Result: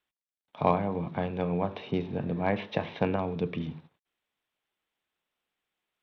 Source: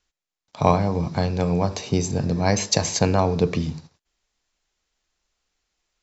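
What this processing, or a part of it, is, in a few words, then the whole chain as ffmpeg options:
Bluetooth headset: -filter_complex "[0:a]asettb=1/sr,asplit=3[a][b][c];[a]atrim=end=3.164[d];[b]atrim=start=3.16:end=3.6,asetpts=PTS-STARTPTS,afade=t=in:d=0.004:c=qsin,afade=t=out:st=0.436:d=0.004:c=qsin,equalizer=f=780:t=o:w=2.6:g=-6[e];[c]atrim=start=3.596[f];[d][e]acrossfade=d=0.004:c1=hsin:c2=qsin[g];[g][f]acrossfade=d=0.004:c1=qsin:c2=hsin,highpass=150,aresample=8000,aresample=44100,volume=-6dB" -ar 32000 -c:a sbc -b:a 64k

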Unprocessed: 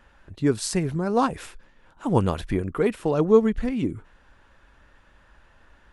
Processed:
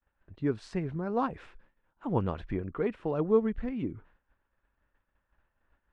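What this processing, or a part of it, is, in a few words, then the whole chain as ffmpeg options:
hearing-loss simulation: -af "lowpass=2.5k,agate=range=-33dB:threshold=-45dB:ratio=3:detection=peak,volume=-8dB"

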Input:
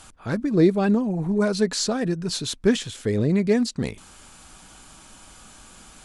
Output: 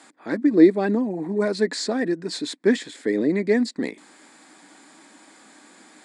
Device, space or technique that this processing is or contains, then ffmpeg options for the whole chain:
television speaker: -af "highpass=f=230:w=0.5412,highpass=f=230:w=1.3066,equalizer=f=300:t=q:w=4:g=9,equalizer=f=1.3k:t=q:w=4:g=-6,equalizer=f=1.9k:t=q:w=4:g=9,equalizer=f=2.9k:t=q:w=4:g=-10,equalizer=f=6k:t=q:w=4:g=-10,lowpass=f=8.2k:w=0.5412,lowpass=f=8.2k:w=1.3066"

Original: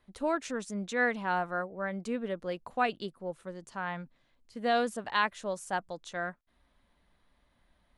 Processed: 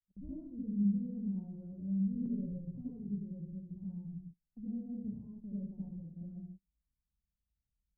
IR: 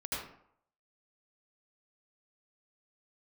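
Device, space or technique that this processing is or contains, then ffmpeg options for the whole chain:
club heard from the street: -filter_complex "[0:a]alimiter=limit=-22.5dB:level=0:latency=1:release=159,lowpass=f=190:w=0.5412,lowpass=f=190:w=1.3066[a];[1:a]atrim=start_sample=2205[b];[a][b]afir=irnorm=-1:irlink=0,asettb=1/sr,asplit=3[c][d][e];[c]atrim=end=2.254[f];[d]atrim=start=2.25:end=2.91,asetpts=PTS-STARTPTS,afade=t=in:d=0.004:c=qsin,afade=t=out:st=0.656:d=0.004:c=qsin,aecho=1:1:7.2:0.96,atrim=end_sample=29106[g];[e]atrim=start=2.906[h];[f][g]acrossfade=d=0.004:c1=hsin:c2=qsin[i];[i][h]acrossfade=d=0.004:c1=qsin:c2=hsin,agate=range=-27dB:threshold=-55dB:ratio=16:detection=peak,volume=5.5dB"

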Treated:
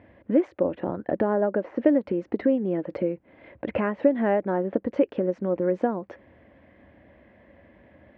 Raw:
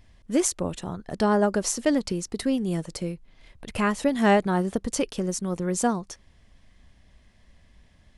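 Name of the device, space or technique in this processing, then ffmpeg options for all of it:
bass amplifier: -filter_complex "[0:a]asettb=1/sr,asplit=3[a][b][c];[a]atrim=end=0.684[d];[b]atrim=start=0.68:end=1.85,asetpts=PTS-STARTPTS,afade=t=in:d=0.004:c=qsin,afade=t=out:st=1.166:d=0.004:c=qsin,acrossover=split=2600[e][f];[f]acompressor=threshold=-43dB:ratio=4:attack=1:release=60[g];[e][g]amix=inputs=2:normalize=0[h];[c]atrim=start=1.846[i];[d][h]acrossfade=d=0.004:c1=hsin:c2=qsin[j];[j][i]acrossfade=d=0.004:c1=qsin:c2=hsin,acompressor=threshold=-34dB:ratio=4,highpass=f=89:w=0.5412,highpass=f=89:w=1.3066,equalizer=f=100:t=q:w=4:g=-8,equalizer=f=160:t=q:w=4:g=-9,equalizer=f=310:t=q:w=4:g=8,equalizer=f=550:t=q:w=4:g=10,equalizer=f=1.2k:t=q:w=4:g=-5,lowpass=f=2.1k:w=0.5412,lowpass=f=2.1k:w=1.3066,volume=9dB"

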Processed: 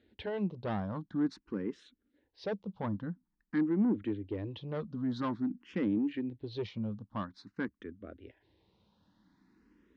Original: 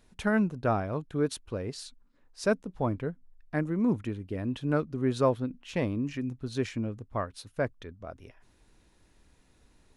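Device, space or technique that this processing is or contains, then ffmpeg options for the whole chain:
barber-pole phaser into a guitar amplifier: -filter_complex "[0:a]asplit=2[a][b];[b]afreqshift=0.49[c];[a][c]amix=inputs=2:normalize=1,asoftclip=type=tanh:threshold=-28dB,highpass=84,equalizer=f=140:t=q:w=4:g=-8,equalizer=f=200:t=q:w=4:g=8,equalizer=f=310:t=q:w=4:g=7,equalizer=f=680:t=q:w=4:g=-7,equalizer=f=1.3k:t=q:w=4:g=-3,equalizer=f=2.5k:t=q:w=4:g=-7,lowpass=f=4.1k:w=0.5412,lowpass=f=4.1k:w=1.3066"

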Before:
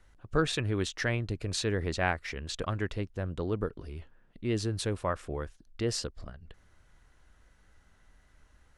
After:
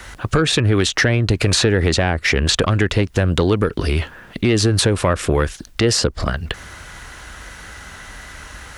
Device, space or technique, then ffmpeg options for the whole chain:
mastering chain: -filter_complex "[0:a]highpass=41,equalizer=f=1.3k:t=o:w=2.3:g=2.5,acrossover=split=530|1600[a][b][c];[a]acompressor=threshold=-32dB:ratio=4[d];[b]acompressor=threshold=-48dB:ratio=4[e];[c]acompressor=threshold=-48dB:ratio=4[f];[d][e][f]amix=inputs=3:normalize=0,acompressor=threshold=-39dB:ratio=2.5,asoftclip=type=tanh:threshold=-29dB,tiltshelf=f=1.2k:g=-4,alimiter=level_in=33dB:limit=-1dB:release=50:level=0:latency=1,volume=-4.5dB"

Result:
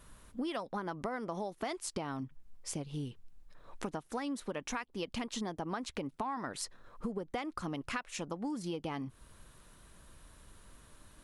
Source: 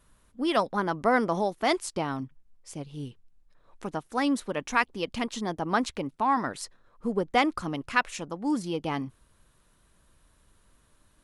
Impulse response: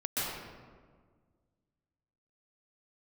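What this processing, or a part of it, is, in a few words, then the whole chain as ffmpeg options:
serial compression, leveller first: -af "acompressor=threshold=-29dB:ratio=2.5,acompressor=threshold=-42dB:ratio=5,volume=6dB"

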